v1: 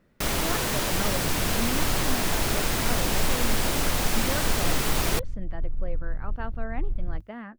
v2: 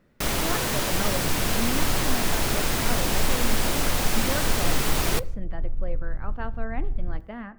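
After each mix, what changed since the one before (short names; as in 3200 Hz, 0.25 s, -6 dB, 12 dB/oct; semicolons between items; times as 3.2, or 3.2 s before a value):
reverb: on, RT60 0.85 s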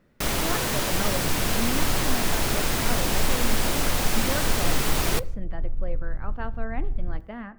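none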